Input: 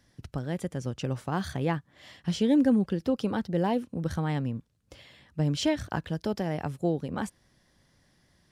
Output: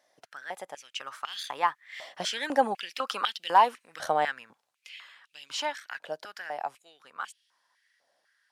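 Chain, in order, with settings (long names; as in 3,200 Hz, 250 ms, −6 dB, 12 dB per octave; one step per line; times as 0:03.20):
source passing by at 0:03.19, 13 m/s, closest 12 metres
high-pass on a step sequencer 4 Hz 640–3,000 Hz
level +7.5 dB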